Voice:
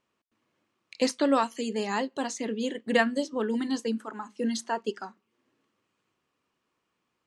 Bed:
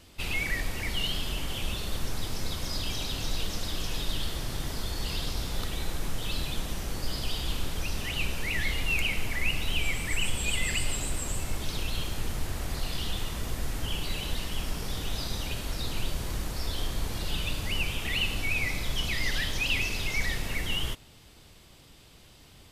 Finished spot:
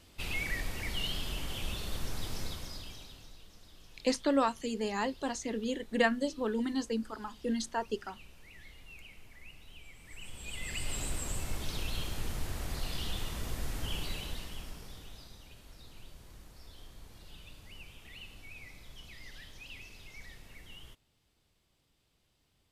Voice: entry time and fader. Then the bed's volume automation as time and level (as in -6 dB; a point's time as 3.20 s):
3.05 s, -4.0 dB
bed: 2.41 s -5 dB
3.40 s -24 dB
9.93 s -24 dB
11.00 s -4.5 dB
14.02 s -4.5 dB
15.40 s -20.5 dB